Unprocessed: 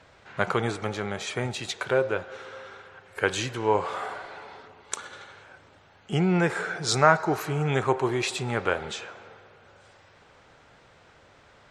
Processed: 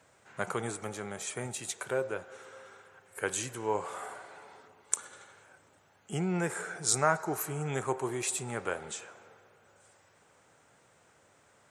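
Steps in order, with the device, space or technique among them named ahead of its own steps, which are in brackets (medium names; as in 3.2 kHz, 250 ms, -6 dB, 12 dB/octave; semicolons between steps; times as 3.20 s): budget condenser microphone (high-pass 100 Hz; resonant high shelf 6.2 kHz +13.5 dB, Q 1.5); trim -8 dB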